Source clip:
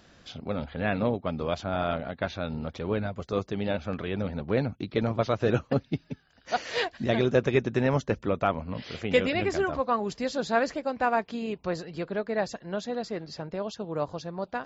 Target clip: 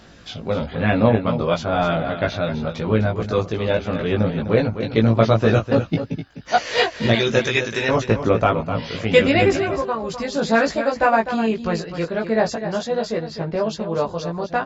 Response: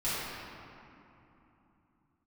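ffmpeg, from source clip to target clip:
-filter_complex "[0:a]asettb=1/sr,asplit=3[link_01][link_02][link_03];[link_01]atrim=end=7.134[link_04];[link_02]atrim=start=7.13:end=7.89,asetpts=PTS-STARTPTS,afade=type=in:duration=0.004:curve=qsin,afade=type=out:start_time=0.756:duration=0.004:curve=qsin,tiltshelf=frequency=1500:gain=-9.5[link_05];[link_03]atrim=start=7.886[link_06];[link_04][link_05]acrossfade=duration=0.004:curve1=hsin:curve2=qsin[link_07];[link_07][link_06]acrossfade=duration=0.004:curve1=qsin:curve2=hsin,asplit=3[link_08][link_09][link_10];[link_08]afade=type=out:start_time=9.53:duration=0.02[link_11];[link_09]acompressor=threshold=-29dB:ratio=6,afade=type=in:start_time=9.53:duration=0.02,afade=type=out:start_time=10.4:duration=0.02[link_12];[link_10]afade=type=in:start_time=10.4:duration=0.02[link_13];[link_11][link_12][link_13]amix=inputs=3:normalize=0,asettb=1/sr,asplit=3[link_14][link_15][link_16];[link_14]atrim=end=13.254[link_17];[link_15]atrim=start=13.25:end=13.69,asetpts=PTS-STARTPTS,afade=type=in:duration=0.004:curve=qsin,afade=type=out:start_time=0.436:duration=0.004:curve=qsin,lowpass=4400[link_18];[link_16]atrim=start=13.686[link_19];[link_17][link_18]acrossfade=duration=0.004:curve1=hsin:curve2=qsin[link_20];[link_20][link_19]acrossfade=duration=0.004:curve1=qsin:curve2=hsin,aphaser=in_gain=1:out_gain=1:delay=2.1:decay=0.25:speed=0.96:type=sinusoidal,asplit=2[link_21][link_22];[link_22]adelay=18,volume=-2dB[link_23];[link_21][link_23]amix=inputs=2:normalize=0,aecho=1:1:253:0.316,volume=6.5dB"

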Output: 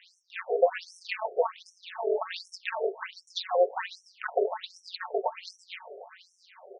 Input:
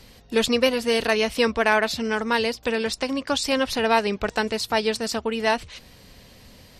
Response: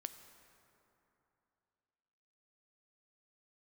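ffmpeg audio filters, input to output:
-filter_complex "[0:a]acompressor=threshold=-21dB:ratio=10,aemphasis=mode=reproduction:type=riaa,aecho=1:1:5.4:0.65,asplit=2[link_01][link_02];[link_02]adelay=869,lowpass=frequency=4300:poles=1,volume=-20dB,asplit=2[link_03][link_04];[link_04]adelay=869,lowpass=frequency=4300:poles=1,volume=0.52,asplit=2[link_05][link_06];[link_06]adelay=869,lowpass=frequency=4300:poles=1,volume=0.52,asplit=2[link_07][link_08];[link_08]adelay=869,lowpass=frequency=4300:poles=1,volume=0.52[link_09];[link_01][link_03][link_05][link_07][link_09]amix=inputs=5:normalize=0,asoftclip=type=tanh:threshold=-17dB,tremolo=f=180:d=0.788,asplit=2[link_10][link_11];[1:a]atrim=start_sample=2205,lowpass=6900[link_12];[link_11][link_12]afir=irnorm=-1:irlink=0,volume=-3dB[link_13];[link_10][link_13]amix=inputs=2:normalize=0,afftfilt=real='re*between(b*sr/1024,510*pow(7800/510,0.5+0.5*sin(2*PI*1.3*pts/sr))/1.41,510*pow(7800/510,0.5+0.5*sin(2*PI*1.3*pts/sr))*1.41)':imag='im*between(b*sr/1024,510*pow(7800/510,0.5+0.5*sin(2*PI*1.3*pts/sr))/1.41,510*pow(7800/510,0.5+0.5*sin(2*PI*1.3*pts/sr))*1.41)':win_size=1024:overlap=0.75,volume=5.5dB"

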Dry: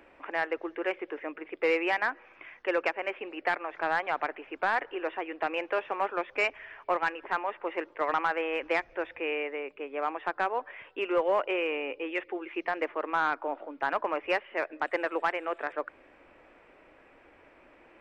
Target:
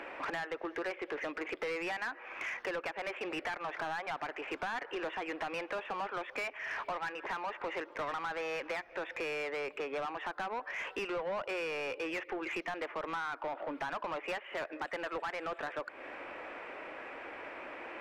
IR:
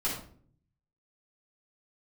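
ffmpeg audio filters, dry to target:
-filter_complex "[0:a]acompressor=threshold=-40dB:ratio=12,asplit=2[link_01][link_02];[link_02]highpass=frequency=720:poles=1,volume=22dB,asoftclip=type=tanh:threshold=-28dB[link_03];[link_01][link_03]amix=inputs=2:normalize=0,lowpass=frequency=2900:poles=1,volume=-6dB"

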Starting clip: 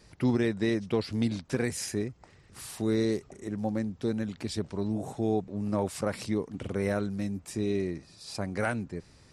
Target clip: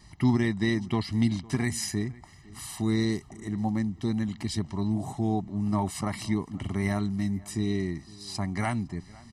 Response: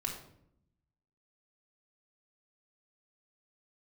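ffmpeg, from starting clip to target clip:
-filter_complex "[0:a]aecho=1:1:1:0.93,asplit=2[link_01][link_02];[link_02]adelay=507.3,volume=-22dB,highshelf=frequency=4000:gain=-11.4[link_03];[link_01][link_03]amix=inputs=2:normalize=0"

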